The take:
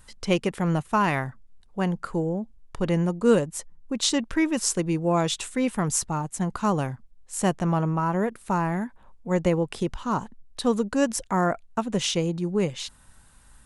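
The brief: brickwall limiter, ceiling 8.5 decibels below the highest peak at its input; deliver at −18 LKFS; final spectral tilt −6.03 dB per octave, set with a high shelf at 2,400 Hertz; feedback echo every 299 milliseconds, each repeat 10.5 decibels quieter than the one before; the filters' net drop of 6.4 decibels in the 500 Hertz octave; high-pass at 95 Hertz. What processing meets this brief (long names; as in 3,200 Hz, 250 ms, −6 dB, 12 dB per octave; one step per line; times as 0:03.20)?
high-pass filter 95 Hz
parametric band 500 Hz −7.5 dB
high-shelf EQ 2,400 Hz −8.5 dB
brickwall limiter −20 dBFS
repeating echo 299 ms, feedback 30%, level −10.5 dB
level +12.5 dB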